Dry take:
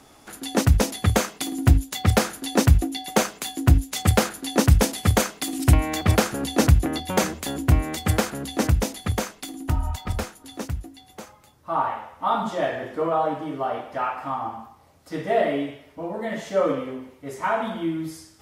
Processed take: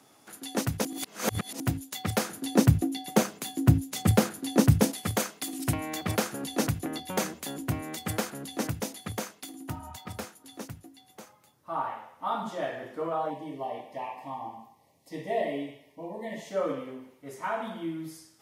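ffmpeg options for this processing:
-filter_complex "[0:a]asettb=1/sr,asplit=3[s0][s1][s2];[s0]atrim=end=2.294[s3];[s1]atrim=start=2.29:end=4.92,asetpts=PTS-STARTPTS,afade=t=in:d=0.004:c=qsin,afade=t=out:st=2.626:d=0.004:c=qsin,lowshelf=f=410:g=10.5[s4];[s2]atrim=start=4.916[s5];[s3][s4]acrossfade=d=0.004:c1=hsin:c2=qsin[s6];[s6][s5]acrossfade=d=0.004:c1=qsin:c2=hsin,asettb=1/sr,asplit=3[s7][s8][s9];[s7]atrim=end=13.304[s10];[s8]atrim=start=13.3:end=16.51,asetpts=PTS-STARTPTS,afade=t=in:d=0.004:c=qsin,afade=t=out:st=3.206:d=0.004:c=qsin,asuperstop=centerf=1400:order=8:qfactor=2.1[s11];[s9]atrim=start=16.506[s12];[s10][s11]acrossfade=d=0.004:c1=hsin:c2=qsin[s13];[s13][s12]acrossfade=d=0.004:c1=qsin:c2=hsin,asplit=3[s14][s15][s16];[s14]atrim=end=0.852[s17];[s15]atrim=start=0.848:end=1.602,asetpts=PTS-STARTPTS,areverse[s18];[s16]atrim=start=1.598[s19];[s17][s18]acrossfade=d=0.004:c1=hsin:c2=hsin[s20];[s20][s19]acrossfade=d=0.004:c1=hsin:c2=hsin,highpass=f=110:w=0.5412,highpass=f=110:w=1.3066,highshelf=f=8300:g=5.5,bandreject=f=7600:w=25,volume=0.398"

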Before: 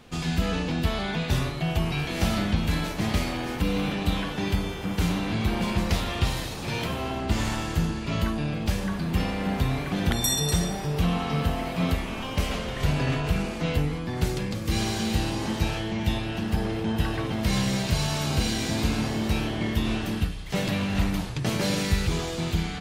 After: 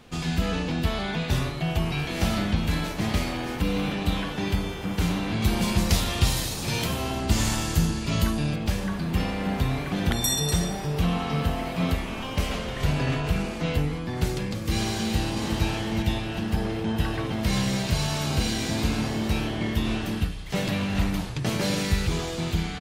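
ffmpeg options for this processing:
-filter_complex "[0:a]asettb=1/sr,asplit=3[s0][s1][s2];[s0]atrim=end=5.424[s3];[s1]atrim=start=5.42:end=8.56,asetpts=PTS-STARTPTS,afade=t=in:d=0.004:c=qsin,afade=t=out:st=3.136:d=0.004:c=qsin,bass=f=250:g=3,treble=f=4000:g=10[s4];[s2]atrim=start=8.556[s5];[s3][s4]acrossfade=d=0.004:c1=hsin:c2=qsin[s6];[s6][s5]acrossfade=d=0.004:c1=qsin:c2=hsin,asplit=2[s7][s8];[s8]afade=t=in:st=14.99:d=0.01,afade=t=out:st=15.65:d=0.01,aecho=0:1:370|740|1110|1480:0.501187|0.175416|0.0613954|0.0214884[s9];[s7][s9]amix=inputs=2:normalize=0"

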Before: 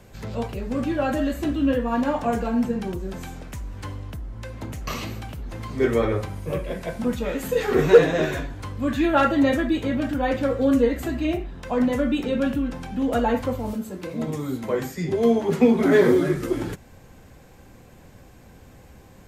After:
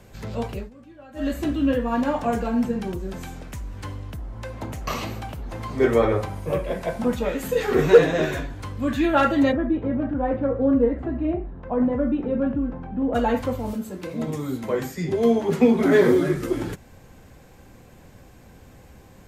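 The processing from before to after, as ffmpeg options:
-filter_complex "[0:a]asettb=1/sr,asplit=3[s0][s1][s2];[s0]atrim=end=4.184[s3];[s1]atrim=start=4.18:end=7.29,asetpts=PTS-STARTPTS,afade=t=in:d=0.004:c=qsin,afade=t=out:st=3.106:d=0.004:c=qsin,equalizer=f=780:t=o:w=1.4:g=6[s4];[s2]atrim=start=7.286[s5];[s3][s4]acrossfade=d=0.004:c1=hsin:c2=qsin[s6];[s6][s5]acrossfade=d=0.004:c1=qsin:c2=hsin,asplit=3[s7][s8][s9];[s7]afade=t=out:st=9.51:d=0.02[s10];[s8]lowpass=1100,afade=t=in:st=9.51:d=0.02,afade=t=out:st=13.14:d=0.02[s11];[s9]afade=t=in:st=13.14:d=0.02[s12];[s10][s11][s12]amix=inputs=3:normalize=0,asplit=3[s13][s14][s15];[s13]atrim=end=0.71,asetpts=PTS-STARTPTS,afade=t=out:st=0.58:d=0.13:silence=0.0794328[s16];[s14]atrim=start=0.71:end=1.14,asetpts=PTS-STARTPTS,volume=0.0794[s17];[s15]atrim=start=1.14,asetpts=PTS-STARTPTS,afade=t=in:d=0.13:silence=0.0794328[s18];[s16][s17][s18]concat=n=3:v=0:a=1"

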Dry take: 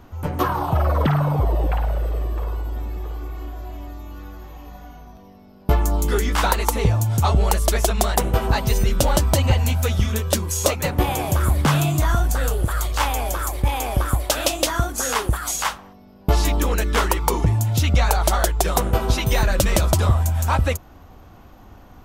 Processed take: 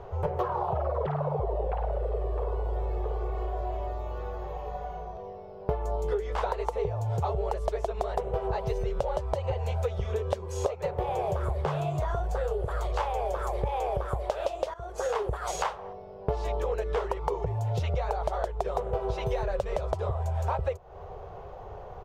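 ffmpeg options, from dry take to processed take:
-filter_complex "[0:a]asplit=2[s0][s1];[s0]atrim=end=14.74,asetpts=PTS-STARTPTS,afade=t=out:st=14.736:d=0.004:c=hsin:silence=0.141254[s2];[s1]atrim=start=14.74,asetpts=PTS-STARTPTS,afade=t=in:d=0.74:silence=0.141254[s3];[s2][s3]concat=n=2:v=0:a=1,firequalizer=gain_entry='entry(160,0);entry(270,-24);entry(400,13);entry(1400,-2);entry(12000,-22)':delay=0.05:min_phase=1,acompressor=threshold=0.0501:ratio=10"

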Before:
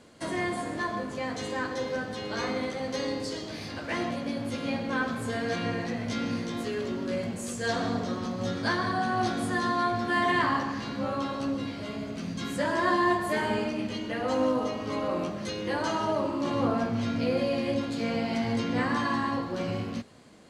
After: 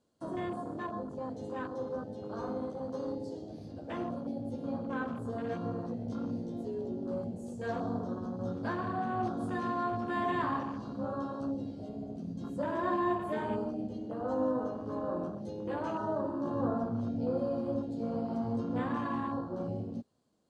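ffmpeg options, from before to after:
-filter_complex "[0:a]asettb=1/sr,asplit=3[s0][s1][s2];[s0]atrim=end=9.404[s3];[s1]atrim=start=9.4:end=11.89,asetpts=PTS-STARTPTS,afade=t=in:d=0.004:c=qsin,afade=t=out:st=2.486:d=0.004:c=qsin,equalizer=f=5600:t=o:w=2.1:g=4[s4];[s2]atrim=start=11.886[s5];[s3][s4]acrossfade=d=0.004:c1=hsin:c2=qsin[s6];[s6][s5]acrossfade=d=0.004:c1=qsin:c2=hsin,afwtdn=0.0224,equalizer=f=2100:t=o:w=0.84:g=-12.5,volume=0.596"

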